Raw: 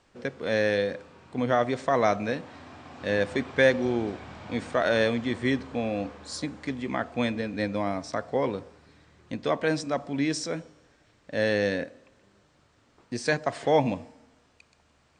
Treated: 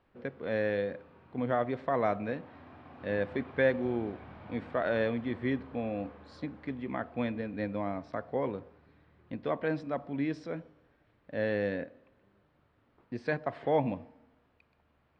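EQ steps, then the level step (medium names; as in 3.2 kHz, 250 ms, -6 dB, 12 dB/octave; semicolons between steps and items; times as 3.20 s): distance through air 390 m; -4.5 dB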